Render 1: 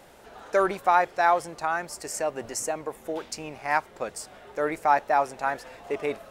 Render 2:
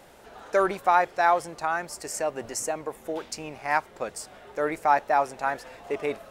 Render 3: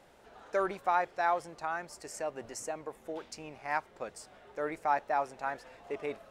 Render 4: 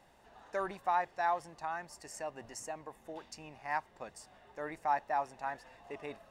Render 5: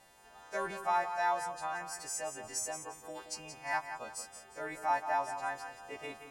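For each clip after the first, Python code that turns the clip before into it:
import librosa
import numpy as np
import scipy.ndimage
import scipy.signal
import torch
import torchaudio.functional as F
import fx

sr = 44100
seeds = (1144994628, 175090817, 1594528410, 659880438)

y1 = x
y2 = fx.high_shelf(y1, sr, hz=9600.0, db=-9.0)
y2 = F.gain(torch.from_numpy(y2), -8.0).numpy()
y3 = y2 + 0.39 * np.pad(y2, (int(1.1 * sr / 1000.0), 0))[:len(y2)]
y3 = F.gain(torch.from_numpy(y3), -4.0).numpy()
y4 = fx.freq_snap(y3, sr, grid_st=2)
y4 = fx.echo_feedback(y4, sr, ms=176, feedback_pct=34, wet_db=-9.5)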